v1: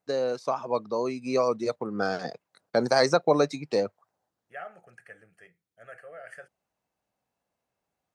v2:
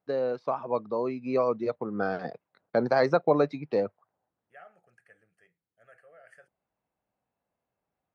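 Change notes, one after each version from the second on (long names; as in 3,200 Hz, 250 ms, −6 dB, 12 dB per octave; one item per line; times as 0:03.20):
first voice: add high-frequency loss of the air 350 metres
second voice −10.5 dB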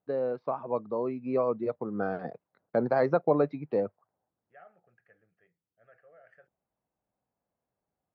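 master: add head-to-tape spacing loss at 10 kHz 32 dB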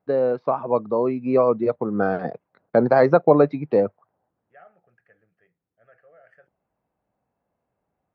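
first voice +9.5 dB
second voice +4.0 dB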